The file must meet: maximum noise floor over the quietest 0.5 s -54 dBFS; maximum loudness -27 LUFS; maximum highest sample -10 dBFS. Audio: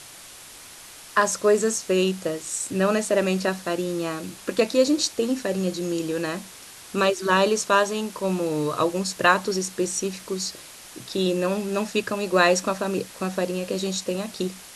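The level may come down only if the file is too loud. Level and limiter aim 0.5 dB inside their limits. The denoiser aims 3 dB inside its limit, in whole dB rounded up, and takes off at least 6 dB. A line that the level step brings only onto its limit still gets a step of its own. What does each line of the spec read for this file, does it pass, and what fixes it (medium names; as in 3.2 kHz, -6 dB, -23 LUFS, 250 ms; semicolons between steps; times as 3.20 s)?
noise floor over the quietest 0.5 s -44 dBFS: fail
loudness -24.0 LUFS: fail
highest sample -4.5 dBFS: fail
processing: noise reduction 10 dB, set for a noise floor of -44 dBFS; trim -3.5 dB; peak limiter -10.5 dBFS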